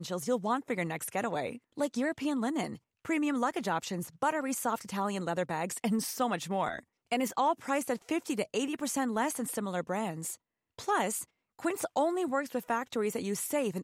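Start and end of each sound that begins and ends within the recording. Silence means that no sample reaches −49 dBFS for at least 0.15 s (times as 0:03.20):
0:01.77–0:02.77
0:03.05–0:06.80
0:07.12–0:10.35
0:10.78–0:11.24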